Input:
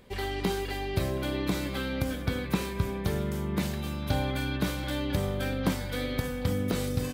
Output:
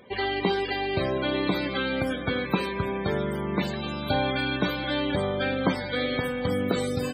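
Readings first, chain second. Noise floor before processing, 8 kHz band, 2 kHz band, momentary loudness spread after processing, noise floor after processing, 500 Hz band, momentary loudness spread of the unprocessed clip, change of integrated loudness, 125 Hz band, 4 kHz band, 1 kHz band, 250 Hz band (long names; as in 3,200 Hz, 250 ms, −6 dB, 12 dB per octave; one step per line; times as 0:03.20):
−35 dBFS, can't be measured, +7.0 dB, 3 LU, −33 dBFS, +6.0 dB, 3 LU, +3.5 dB, −1.5 dB, +6.0 dB, +7.0 dB, +3.0 dB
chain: high-pass filter 350 Hz 6 dB per octave
spectral peaks only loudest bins 64
level +8 dB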